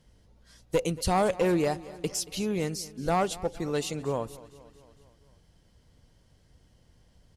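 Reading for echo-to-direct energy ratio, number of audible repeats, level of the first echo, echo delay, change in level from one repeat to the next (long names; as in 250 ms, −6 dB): −17.0 dB, 4, −19.0 dB, 229 ms, −4.5 dB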